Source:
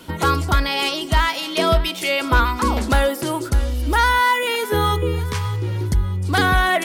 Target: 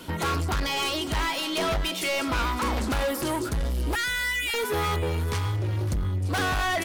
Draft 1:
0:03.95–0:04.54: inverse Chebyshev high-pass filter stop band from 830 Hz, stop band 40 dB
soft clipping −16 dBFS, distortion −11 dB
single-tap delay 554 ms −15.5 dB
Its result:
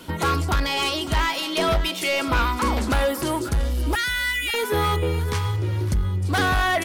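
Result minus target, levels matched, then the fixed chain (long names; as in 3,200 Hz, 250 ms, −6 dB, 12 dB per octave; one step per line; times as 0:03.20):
soft clipping: distortion −5 dB
0:03.95–0:04.54: inverse Chebyshev high-pass filter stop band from 830 Hz, stop band 40 dB
soft clipping −23.5 dBFS, distortion −6 dB
single-tap delay 554 ms −15.5 dB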